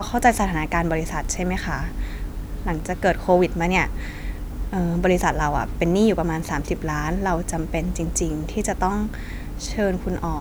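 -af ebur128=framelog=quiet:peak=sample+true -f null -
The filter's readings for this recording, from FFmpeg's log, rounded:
Integrated loudness:
  I:         -23.4 LUFS
  Threshold: -33.5 LUFS
Loudness range:
  LRA:         3.1 LU
  Threshold: -43.3 LUFS
  LRA low:   -25.1 LUFS
  LRA high:  -22.1 LUFS
Sample peak:
  Peak:       -2.7 dBFS
True peak:
  Peak:       -2.6 dBFS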